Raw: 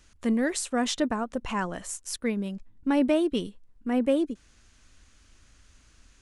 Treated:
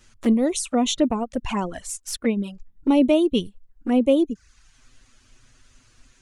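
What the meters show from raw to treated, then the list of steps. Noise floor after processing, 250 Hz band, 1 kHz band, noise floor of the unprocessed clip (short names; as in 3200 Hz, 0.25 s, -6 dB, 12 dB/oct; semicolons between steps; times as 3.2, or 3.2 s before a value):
-60 dBFS, +6.0 dB, +3.5 dB, -60 dBFS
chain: reverb removal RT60 0.61 s; envelope flanger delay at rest 9.1 ms, full sweep at -25 dBFS; gain +7.5 dB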